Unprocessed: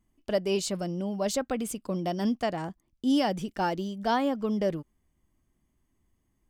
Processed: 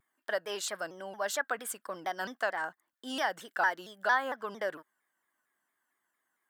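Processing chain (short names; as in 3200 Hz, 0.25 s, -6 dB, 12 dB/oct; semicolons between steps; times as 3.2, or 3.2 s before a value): HPF 1100 Hz 12 dB/oct; bell 6400 Hz -14 dB 1.9 oct; in parallel at -1 dB: compressor, threshold -39 dBFS, peak gain reduction 11 dB; on the sum: thirty-one-band EQ 1600 Hz +11 dB, 2500 Hz -10 dB, 8000 Hz +6 dB; shaped vibrato saw down 4.4 Hz, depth 160 cents; gain +2 dB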